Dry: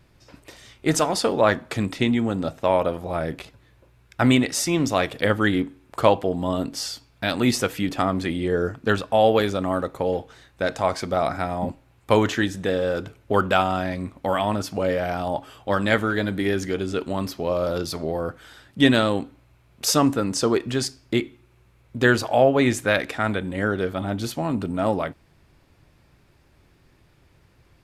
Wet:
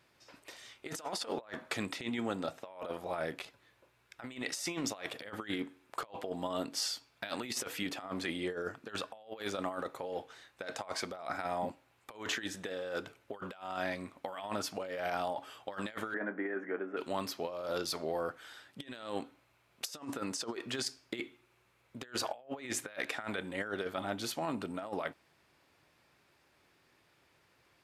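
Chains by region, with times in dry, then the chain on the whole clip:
0:16.14–0:16.97: elliptic band-pass filter 220–1,800 Hz + double-tracking delay 23 ms −13.5 dB
whole clip: high-pass filter 700 Hz 6 dB per octave; high-shelf EQ 5,800 Hz −2.5 dB; compressor whose output falls as the input rises −30 dBFS, ratio −0.5; level −7.5 dB

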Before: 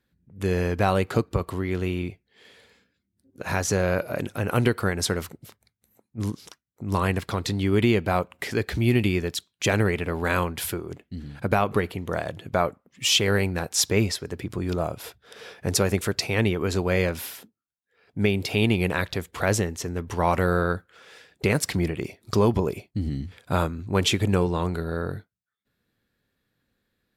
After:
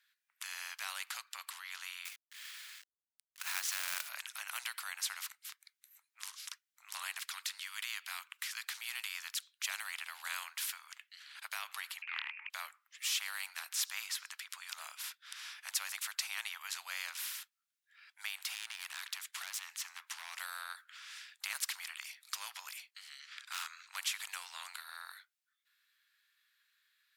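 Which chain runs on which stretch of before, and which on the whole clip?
0:02.05–0:04.09: high-pass filter 330 Hz 24 dB per octave + parametric band 1,900 Hz +4.5 dB 2.9 octaves + log-companded quantiser 4 bits
0:07.19–0:08.62: high-pass filter 1,200 Hz + de-essing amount 50%
0:12.02–0:12.50: voice inversion scrambler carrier 2,600 Hz + highs frequency-modulated by the lows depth 0.55 ms
0:18.38–0:20.40: parametric band 13,000 Hz −4 dB 0.33 octaves + downward compressor 8 to 1, threshold −24 dBFS + hard clipping −25 dBFS
0:23.19–0:23.96: drawn EQ curve 210 Hz 0 dB, 340 Hz −22 dB, 880 Hz −3 dB, 1,300 Hz +8 dB, 2,800 Hz +2 dB, 6,300 Hz +4 dB, 11,000 Hz −7 dB + hard clipping −20 dBFS
whole clip: Bessel high-pass filter 2,200 Hz, order 8; high-shelf EQ 3,500 Hz −7 dB; every bin compressed towards the loudest bin 2 to 1; level −3.5 dB

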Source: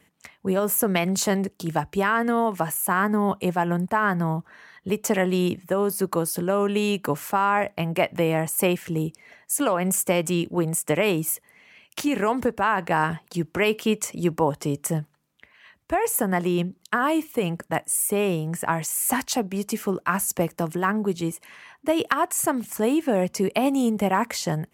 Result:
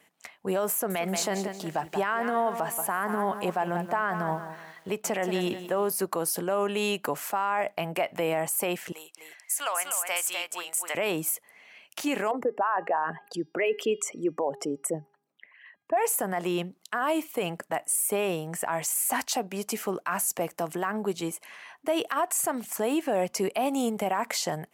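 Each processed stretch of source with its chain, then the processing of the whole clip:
0:00.72–0:05.89: high-shelf EQ 6,100 Hz −6 dB + feedback echo at a low word length 180 ms, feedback 35%, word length 8 bits, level −12 dB
0:08.92–0:10.95: high-pass filter 1,200 Hz + single-tap delay 252 ms −5 dB
0:12.31–0:15.97: spectral envelope exaggerated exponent 2 + high-pass filter 170 Hz + hum removal 407.1 Hz, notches 14
whole clip: high-pass filter 470 Hz 6 dB per octave; parametric band 700 Hz +5.5 dB 0.47 octaves; brickwall limiter −17.5 dBFS

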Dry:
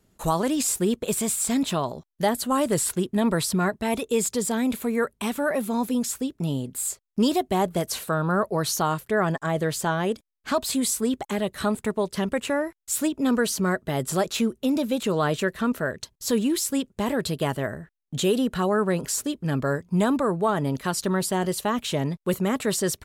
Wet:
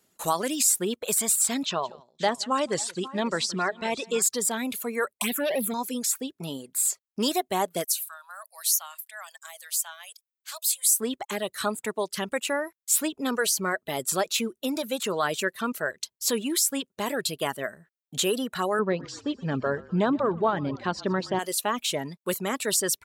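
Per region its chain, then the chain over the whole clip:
0:01.65–0:04.22: low-pass filter 6,500 Hz 24 dB per octave + multi-tap delay 170/536 ms −14/−15.5 dB
0:05.12–0:05.74: leveller curve on the samples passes 2 + phaser swept by the level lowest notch 180 Hz, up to 1,400 Hz, full sweep at −17.5 dBFS
0:07.84–0:11.00: Butterworth high-pass 560 Hz 72 dB per octave + first difference
0:18.79–0:21.39: low-pass filter 5,000 Hz 24 dB per octave + spectral tilt −2.5 dB per octave + echo with shifted repeats 123 ms, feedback 59%, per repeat −31 Hz, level −12 dB
whole clip: high-pass filter 280 Hz 6 dB per octave; spectral tilt +1.5 dB per octave; reverb reduction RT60 0.85 s

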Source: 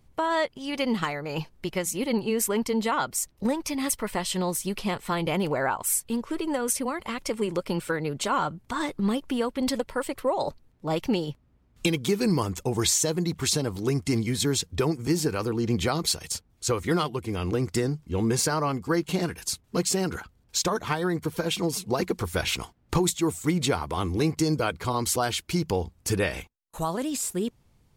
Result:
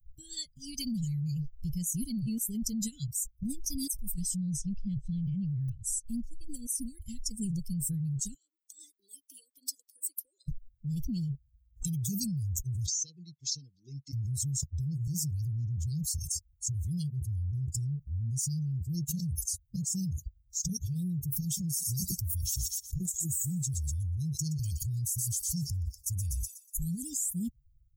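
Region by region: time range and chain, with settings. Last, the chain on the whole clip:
0:04.36–0:06.06: low-pass filter 3,800 Hz + hard clipping −16.5 dBFS
0:08.34–0:10.48: Butterworth high-pass 320 Hz 48 dB per octave + downward compressor 2.5 to 1, threshold −36 dBFS
0:12.86–0:14.13: high-pass filter 470 Hz + high-frequency loss of the air 220 metres
0:21.63–0:26.78: high-shelf EQ 5,800 Hz +4 dB + delay with a high-pass on its return 122 ms, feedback 50%, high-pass 2,700 Hz, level −6.5 dB
whole clip: spectral dynamics exaggerated over time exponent 2; Chebyshev band-stop filter 140–6,200 Hz, order 4; envelope flattener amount 100%; level −6.5 dB

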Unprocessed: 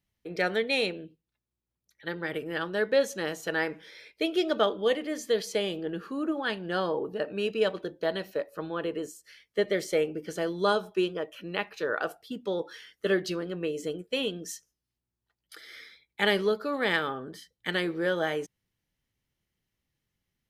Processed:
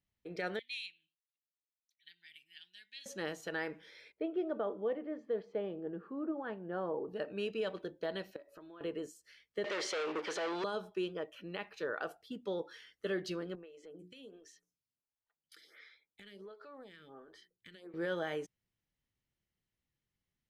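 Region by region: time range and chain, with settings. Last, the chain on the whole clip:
0:00.59–0:03.06: inverse Chebyshev high-pass filter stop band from 1,300 Hz + spectral tilt −2 dB per octave
0:04.12–0:07.08: low-pass filter 1,100 Hz + low-shelf EQ 76 Hz −12 dB
0:08.36–0:08.81: comb filter 3.1 ms, depth 50% + downward compressor 8 to 1, threshold −43 dBFS
0:09.64–0:10.64: leveller curve on the samples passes 5 + band-pass filter 610–4,300 Hz
0:13.55–0:17.94: mains-hum notches 60/120/180/240/300/360/420 Hz + downward compressor 8 to 1, threshold −39 dBFS + phaser with staggered stages 1.4 Hz
whole clip: brickwall limiter −20 dBFS; high-shelf EQ 9,500 Hz −8.5 dB; level −7 dB

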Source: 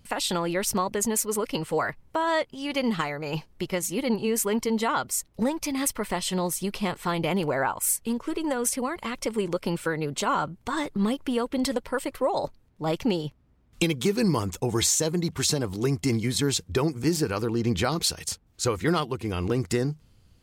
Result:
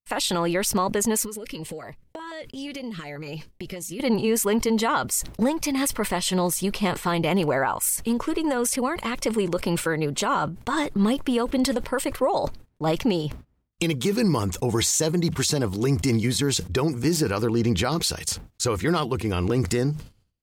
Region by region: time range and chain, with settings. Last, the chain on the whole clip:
0:01.23–0:04.00: downward compressor 16 to 1, threshold −33 dBFS + notch on a step sequencer 8.3 Hz 680–1,500 Hz
whole clip: noise gate −46 dBFS, range −49 dB; brickwall limiter −17.5 dBFS; level that may fall only so fast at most 130 dB per second; level +4 dB

